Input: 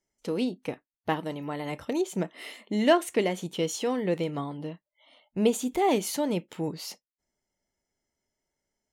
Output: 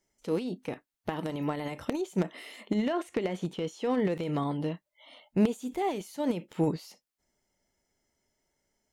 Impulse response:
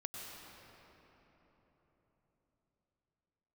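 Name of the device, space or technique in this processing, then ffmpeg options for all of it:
de-esser from a sidechain: -filter_complex "[0:a]asettb=1/sr,asplit=3[link_01][link_02][link_03];[link_01]atrim=end=2.744[link_04];[link_02]atrim=start=2.74:end=4.05,asetpts=PTS-STARTPTS,afade=type=in:duration=0.004:curve=qsin,afade=type=out:start_time=1.306:duration=0.004:curve=qsin,aemphasis=mode=reproduction:type=50kf[link_05];[link_03]atrim=start=4.046[link_06];[link_04][link_05]acrossfade=duration=0.004:curve1=hsin:curve2=qsin[link_07];[link_07][link_06]acrossfade=duration=0.004:curve1=qsin:curve2=hsin,asplit=2[link_08][link_09];[link_09]highpass=4300,apad=whole_len=393564[link_10];[link_08][link_10]sidechaincompress=threshold=-56dB:ratio=4:attack=0.69:release=55,volume=5.5dB"

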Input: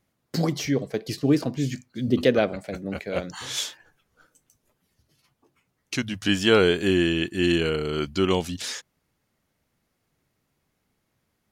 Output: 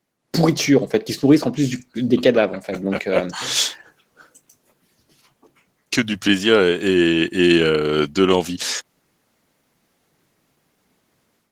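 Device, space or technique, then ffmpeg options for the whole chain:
video call: -af "highpass=170,dynaudnorm=framelen=190:gausssize=3:maxgain=11.5dB" -ar 48000 -c:a libopus -b:a 16k

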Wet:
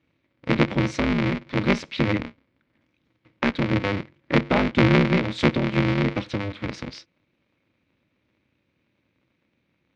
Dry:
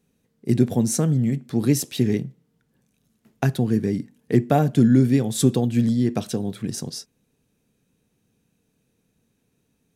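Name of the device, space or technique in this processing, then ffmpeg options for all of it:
ring modulator pedal into a guitar cabinet: -af "aeval=exprs='val(0)*sgn(sin(2*PI*100*n/s))':channel_layout=same,highpass=88,equalizer=frequency=400:width_type=q:width=4:gain=-6,equalizer=frequency=740:width_type=q:width=4:gain=-7,equalizer=frequency=2200:width_type=q:width=4:gain=9,lowpass=frequency=4200:width=0.5412,lowpass=frequency=4200:width=1.3066"

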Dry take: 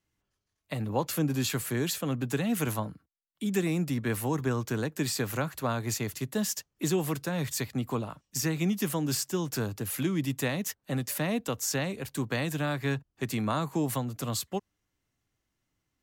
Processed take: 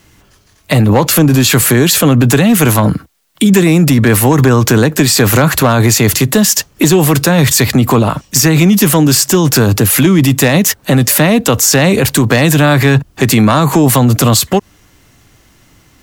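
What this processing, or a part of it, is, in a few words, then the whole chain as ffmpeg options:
loud club master: -af "acompressor=threshold=-32dB:ratio=2,asoftclip=type=hard:threshold=-26dB,alimiter=level_in=35dB:limit=-1dB:release=50:level=0:latency=1,volume=-1dB"

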